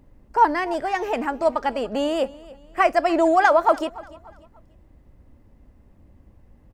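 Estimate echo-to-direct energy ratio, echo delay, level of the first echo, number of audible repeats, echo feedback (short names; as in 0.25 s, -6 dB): -20.0 dB, 0.292 s, -20.5 dB, 2, 37%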